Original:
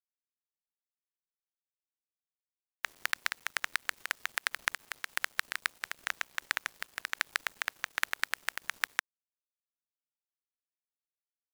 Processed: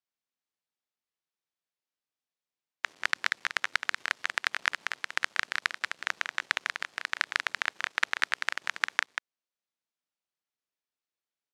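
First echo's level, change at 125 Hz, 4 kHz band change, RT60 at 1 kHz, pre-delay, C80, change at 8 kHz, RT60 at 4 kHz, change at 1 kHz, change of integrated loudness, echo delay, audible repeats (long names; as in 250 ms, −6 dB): −6.5 dB, can't be measured, +4.0 dB, no reverb audible, no reverb audible, no reverb audible, −1.0 dB, no reverb audible, +5.0 dB, +4.0 dB, 188 ms, 1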